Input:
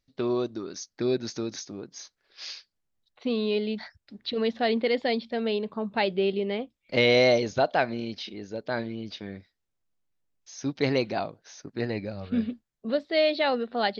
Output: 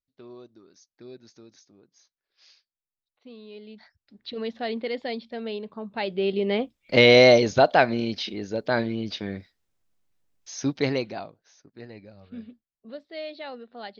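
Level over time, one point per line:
0:03.47 −18 dB
0:04.31 −5 dB
0:05.95 −5 dB
0:06.57 +6 dB
0:10.58 +6 dB
0:11.19 −6 dB
0:11.68 −13 dB

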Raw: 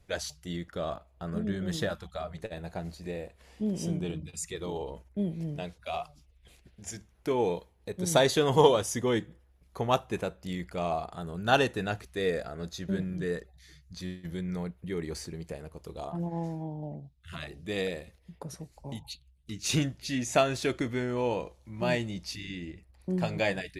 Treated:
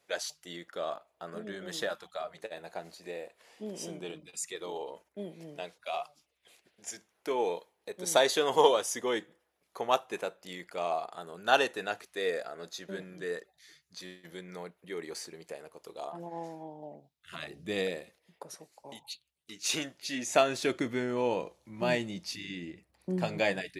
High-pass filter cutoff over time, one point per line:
0:17.16 430 Hz
0:17.66 130 Hz
0:18.33 460 Hz
0:19.87 460 Hz
0:20.79 180 Hz

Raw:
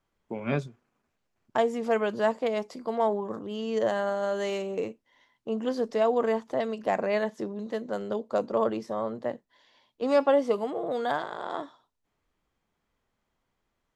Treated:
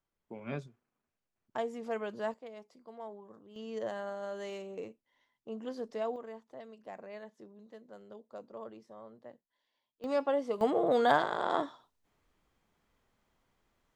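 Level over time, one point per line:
−10.5 dB
from 0:02.34 −19.5 dB
from 0:03.56 −11 dB
from 0:06.16 −19.5 dB
from 0:10.04 −8.5 dB
from 0:10.61 +3 dB

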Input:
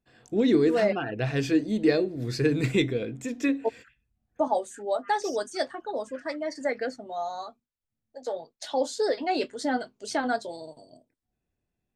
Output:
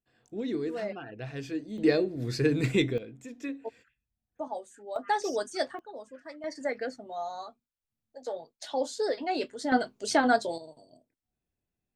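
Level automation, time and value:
−11 dB
from 0:01.78 −1.5 dB
from 0:02.98 −11 dB
from 0:04.96 −1.5 dB
from 0:05.79 −11.5 dB
from 0:06.44 −3.5 dB
from 0:09.72 +4 dB
from 0:10.58 −5 dB

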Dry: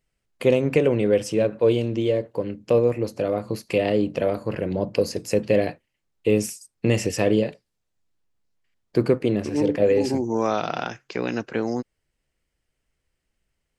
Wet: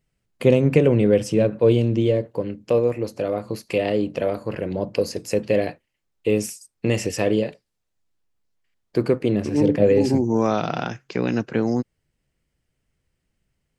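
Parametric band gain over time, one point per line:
parametric band 140 Hz 2.1 octaves
0:02.09 +7.5 dB
0:02.71 −1.5 dB
0:09.05 −1.5 dB
0:09.69 +8.5 dB

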